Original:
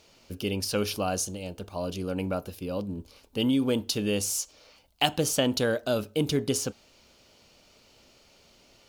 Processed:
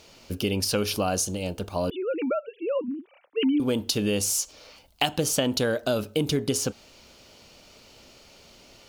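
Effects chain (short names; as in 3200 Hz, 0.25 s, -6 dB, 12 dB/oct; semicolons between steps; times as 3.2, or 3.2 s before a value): 1.9–3.6 sine-wave speech; compressor 3:1, threshold -29 dBFS, peak gain reduction 9 dB; gain +6.5 dB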